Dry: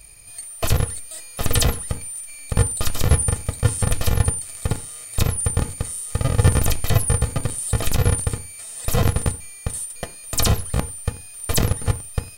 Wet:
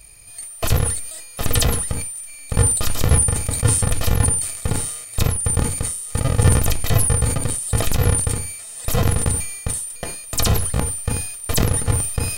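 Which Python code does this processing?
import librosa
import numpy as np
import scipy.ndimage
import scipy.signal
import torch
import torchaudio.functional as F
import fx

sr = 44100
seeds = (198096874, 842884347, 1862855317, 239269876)

y = fx.sustainer(x, sr, db_per_s=57.0)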